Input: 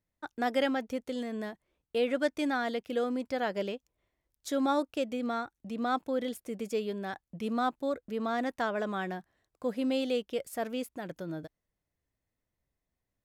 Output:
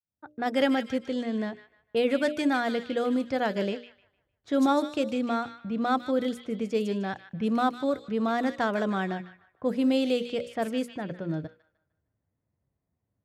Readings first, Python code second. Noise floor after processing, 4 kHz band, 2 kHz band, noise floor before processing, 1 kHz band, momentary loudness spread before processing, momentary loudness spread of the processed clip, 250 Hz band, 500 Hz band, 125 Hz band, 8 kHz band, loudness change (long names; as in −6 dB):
−82 dBFS, +4.0 dB, +4.0 dB, below −85 dBFS, +4.0 dB, 11 LU, 9 LU, +6.5 dB, +4.0 dB, +8.5 dB, can't be measured, +5.0 dB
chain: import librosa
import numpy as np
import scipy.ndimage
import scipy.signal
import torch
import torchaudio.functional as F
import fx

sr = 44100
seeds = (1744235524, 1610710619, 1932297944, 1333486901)

p1 = fx.fade_in_head(x, sr, length_s=0.63)
p2 = scipy.signal.sosfilt(scipy.signal.butter(2, 74.0, 'highpass', fs=sr, output='sos'), p1)
p3 = fx.hum_notches(p2, sr, base_hz=60, count=10)
p4 = p3 + fx.echo_wet_highpass(p3, sr, ms=152, feedback_pct=40, hz=2000.0, wet_db=-7, dry=0)
p5 = fx.env_lowpass(p4, sr, base_hz=1200.0, full_db=-28.0)
p6 = fx.peak_eq(p5, sr, hz=110.0, db=8.5, octaves=2.1)
y = p6 * librosa.db_to_amplitude(3.5)